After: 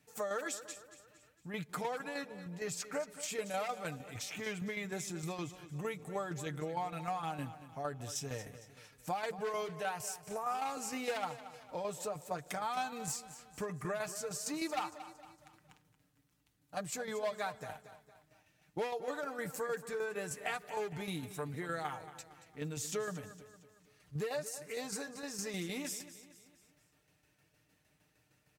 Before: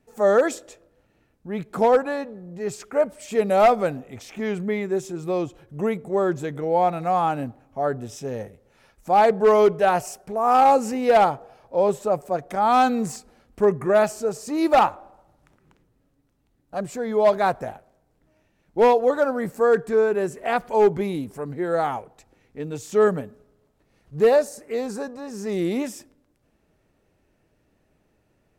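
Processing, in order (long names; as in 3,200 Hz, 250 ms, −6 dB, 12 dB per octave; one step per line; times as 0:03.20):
high-pass filter 57 Hz 24 dB per octave
guitar amp tone stack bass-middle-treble 5-5-5
comb filter 6.6 ms, depth 56%
downward compressor 4 to 1, threshold −45 dBFS, peak gain reduction 16.5 dB
shaped tremolo saw down 6.5 Hz, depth 55%
repeating echo 229 ms, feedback 46%, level −14 dB
level +10.5 dB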